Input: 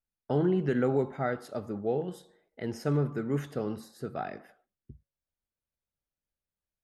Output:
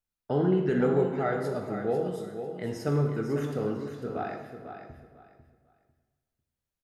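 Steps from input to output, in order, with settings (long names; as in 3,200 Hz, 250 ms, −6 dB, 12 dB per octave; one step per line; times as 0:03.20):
0:03.73–0:04.20: high-frequency loss of the air 170 metres
on a send: repeating echo 498 ms, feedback 23%, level −9 dB
on the sum: dense smooth reverb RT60 1.2 s, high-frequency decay 0.75×, DRR 2.5 dB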